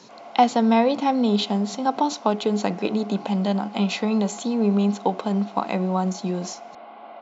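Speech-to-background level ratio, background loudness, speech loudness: 19.0 dB, -42.0 LUFS, -23.0 LUFS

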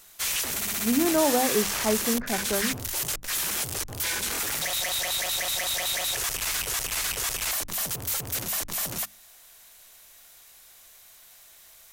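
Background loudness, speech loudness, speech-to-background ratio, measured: -26.5 LUFS, -27.0 LUFS, -0.5 dB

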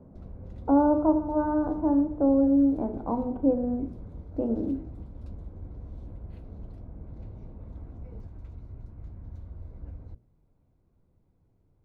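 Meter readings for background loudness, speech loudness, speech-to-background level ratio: -45.0 LUFS, -25.5 LUFS, 19.5 dB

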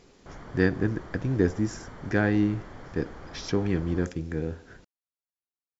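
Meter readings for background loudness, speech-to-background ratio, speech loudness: -45.5 LUFS, 17.0 dB, -28.5 LUFS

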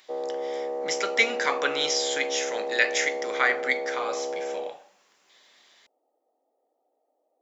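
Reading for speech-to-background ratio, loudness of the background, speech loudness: 5.5 dB, -31.5 LUFS, -26.0 LUFS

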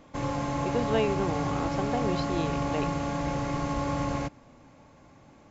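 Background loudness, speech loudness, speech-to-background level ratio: -30.5 LUFS, -33.0 LUFS, -2.5 dB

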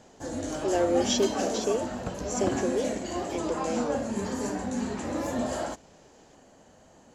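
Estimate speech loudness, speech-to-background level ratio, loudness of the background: -30.5 LUFS, 1.0 dB, -31.5 LUFS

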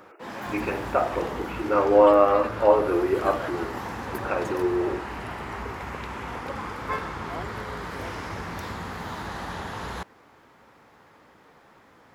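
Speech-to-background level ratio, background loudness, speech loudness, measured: 11.0 dB, -34.0 LUFS, -23.0 LUFS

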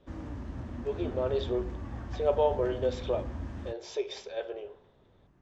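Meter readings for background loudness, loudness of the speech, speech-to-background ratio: -40.0 LUFS, -32.5 LUFS, 7.5 dB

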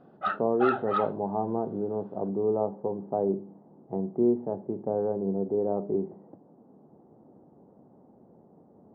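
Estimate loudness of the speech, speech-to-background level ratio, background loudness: -29.5 LUFS, 2.0 dB, -31.5 LUFS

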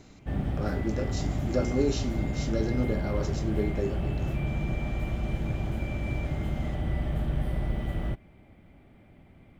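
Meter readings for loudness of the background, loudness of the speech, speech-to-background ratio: -32.0 LUFS, -32.5 LUFS, -0.5 dB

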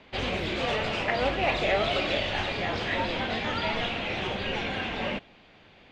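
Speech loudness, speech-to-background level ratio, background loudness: -31.5 LUFS, -2.0 dB, -29.5 LUFS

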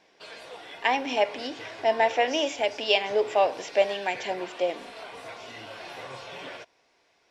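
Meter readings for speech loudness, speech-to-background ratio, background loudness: -26.0 LUFS, 15.0 dB, -41.0 LUFS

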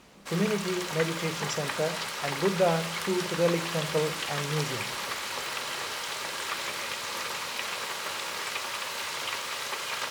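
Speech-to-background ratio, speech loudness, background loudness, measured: 1.5 dB, -30.5 LUFS, -32.0 LUFS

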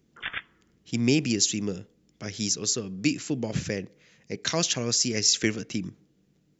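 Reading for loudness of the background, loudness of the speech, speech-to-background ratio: -35.5 LUFS, -26.0 LUFS, 9.5 dB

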